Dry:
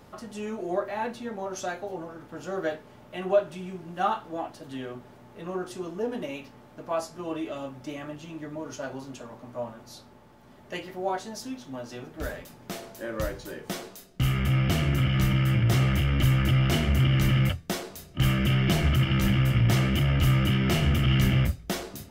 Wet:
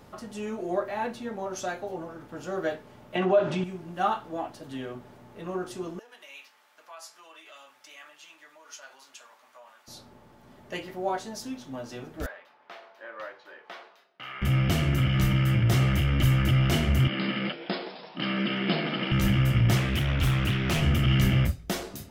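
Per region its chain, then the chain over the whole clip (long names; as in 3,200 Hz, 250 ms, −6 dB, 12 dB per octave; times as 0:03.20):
0:03.15–0:03.64: high-pass filter 110 Hz + high-frequency loss of the air 110 metres + envelope flattener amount 50%
0:05.99–0:09.88: downward compressor 2.5 to 1, threshold −35 dBFS + high-pass filter 1,400 Hz
0:12.26–0:14.42: Chebyshev high-pass filter 950 Hz + high-frequency loss of the air 330 metres
0:17.08–0:19.12: linear-phase brick-wall band-pass 160–5,200 Hz + echo with shifted repeats 167 ms, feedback 64%, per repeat +140 Hz, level −14 dB
0:19.77–0:20.82: parametric band 290 Hz −3.5 dB 2.5 octaves + double-tracking delay 18 ms −12 dB + highs frequency-modulated by the lows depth 0.36 ms
whole clip: no processing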